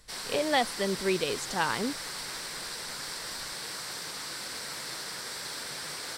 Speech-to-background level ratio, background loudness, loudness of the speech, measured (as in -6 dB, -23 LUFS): 6.0 dB, -36.0 LUFS, -30.0 LUFS